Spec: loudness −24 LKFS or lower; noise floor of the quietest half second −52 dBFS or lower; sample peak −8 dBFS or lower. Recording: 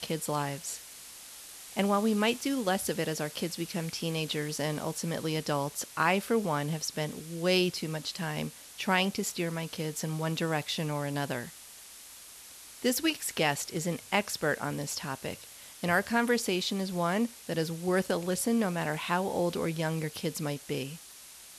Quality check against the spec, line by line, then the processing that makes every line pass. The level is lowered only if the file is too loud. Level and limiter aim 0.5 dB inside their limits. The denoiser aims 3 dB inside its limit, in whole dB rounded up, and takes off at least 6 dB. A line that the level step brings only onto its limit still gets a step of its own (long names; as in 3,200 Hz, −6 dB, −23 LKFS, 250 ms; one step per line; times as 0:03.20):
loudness −31.0 LKFS: in spec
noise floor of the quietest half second −50 dBFS: out of spec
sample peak −12.5 dBFS: in spec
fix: broadband denoise 6 dB, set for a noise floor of −50 dBFS